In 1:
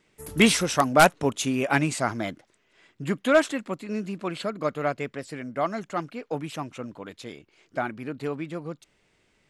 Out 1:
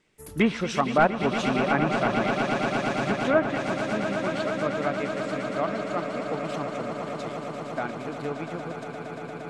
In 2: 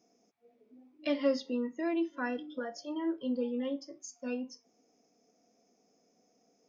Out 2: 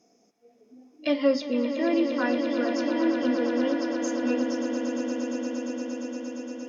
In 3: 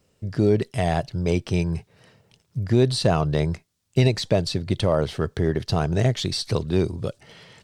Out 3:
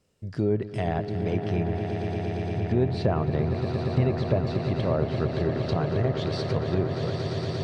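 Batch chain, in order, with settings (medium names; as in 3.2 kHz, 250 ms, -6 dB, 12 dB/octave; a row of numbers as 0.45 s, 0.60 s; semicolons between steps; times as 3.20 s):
echo with a slow build-up 116 ms, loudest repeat 8, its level -11.5 dB; low-pass that closes with the level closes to 1.7 kHz, closed at -14.5 dBFS; normalise loudness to -27 LUFS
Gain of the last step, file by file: -3.0 dB, +6.5 dB, -5.5 dB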